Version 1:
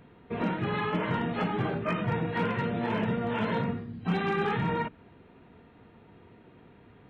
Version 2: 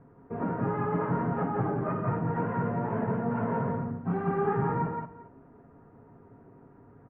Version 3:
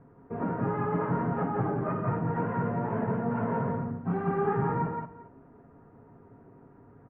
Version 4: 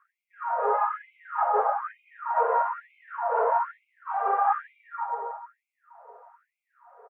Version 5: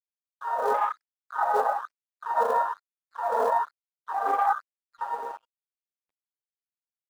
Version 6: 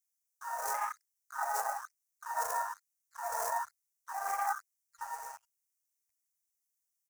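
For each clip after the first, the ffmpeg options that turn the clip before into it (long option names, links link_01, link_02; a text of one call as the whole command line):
ffmpeg -i in.wav -filter_complex "[0:a]lowpass=frequency=1400:width=0.5412,lowpass=frequency=1400:width=1.3066,aecho=1:1:7.3:0.36,asplit=2[link_01][link_02];[link_02]aecho=0:1:174|401:0.708|0.126[link_03];[link_01][link_03]amix=inputs=2:normalize=0,volume=-1.5dB" out.wav
ffmpeg -i in.wav -af anull out.wav
ffmpeg -i in.wav -filter_complex "[0:a]highshelf=frequency=1500:width_type=q:width=1.5:gain=-7,asplit=2[link_01][link_02];[link_02]adelay=324,lowpass=frequency=1200:poles=1,volume=-8dB,asplit=2[link_03][link_04];[link_04]adelay=324,lowpass=frequency=1200:poles=1,volume=0.47,asplit=2[link_05][link_06];[link_06]adelay=324,lowpass=frequency=1200:poles=1,volume=0.47,asplit=2[link_07][link_08];[link_08]adelay=324,lowpass=frequency=1200:poles=1,volume=0.47,asplit=2[link_09][link_10];[link_10]adelay=324,lowpass=frequency=1200:poles=1,volume=0.47[link_11];[link_01][link_03][link_05][link_07][link_09][link_11]amix=inputs=6:normalize=0,afftfilt=real='re*gte(b*sr/1024,410*pow(2100/410,0.5+0.5*sin(2*PI*1.1*pts/sr)))':imag='im*gte(b*sr/1024,410*pow(2100/410,0.5+0.5*sin(2*PI*1.1*pts/sr)))':win_size=1024:overlap=0.75,volume=9dB" out.wav
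ffmpeg -i in.wav -filter_complex "[0:a]afwtdn=0.0355,acrossover=split=520|760|1200[link_01][link_02][link_03][link_04];[link_01]acrusher=bits=4:mode=log:mix=0:aa=0.000001[link_05];[link_05][link_02][link_03][link_04]amix=inputs=4:normalize=0,aeval=exprs='sgn(val(0))*max(abs(val(0))-0.00168,0)':channel_layout=same" out.wav
ffmpeg -i in.wav -af "firequalizer=gain_entry='entry(110,0);entry(170,-30);entry(410,-26);entry(690,-10);entry(1200,-10);entry(2000,0);entry(3400,-13);entry(5800,13)':delay=0.05:min_phase=1" out.wav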